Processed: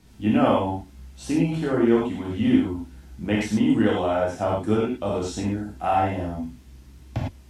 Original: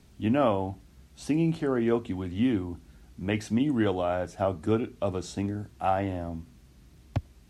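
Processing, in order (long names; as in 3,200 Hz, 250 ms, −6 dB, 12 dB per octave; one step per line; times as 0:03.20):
reverb whose tail is shaped and stops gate 130 ms flat, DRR −4.5 dB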